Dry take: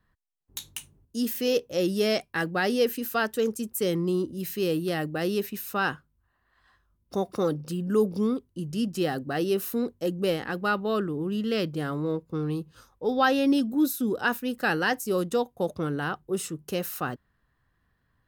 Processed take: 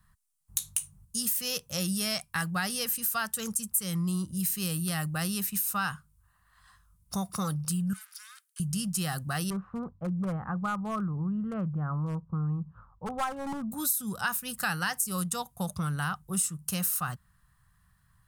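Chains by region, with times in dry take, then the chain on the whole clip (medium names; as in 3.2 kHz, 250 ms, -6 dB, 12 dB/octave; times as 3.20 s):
7.93–8.60 s: comb filter that takes the minimum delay 1.6 ms + elliptic high-pass 1.5 kHz, stop band 80 dB + compression 5:1, threshold -51 dBFS
9.50–13.72 s: low-pass 1.2 kHz 24 dB/octave + overload inside the chain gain 20 dB
whole clip: FFT filter 190 Hz 0 dB, 260 Hz -19 dB, 430 Hz -22 dB, 670 Hz -10 dB, 1.2 kHz 0 dB, 1.7 kHz -5 dB, 3.5 kHz -3 dB, 6.5 kHz +5 dB, 9.3 kHz +13 dB, 15 kHz +4 dB; compression 2.5:1, threshold -36 dBFS; trim +6.5 dB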